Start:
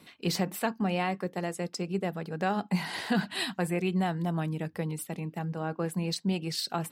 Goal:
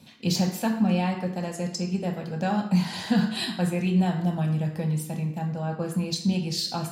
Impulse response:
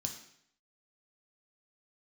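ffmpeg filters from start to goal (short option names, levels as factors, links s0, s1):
-filter_complex "[1:a]atrim=start_sample=2205[s0];[0:a][s0]afir=irnorm=-1:irlink=0,volume=1.26"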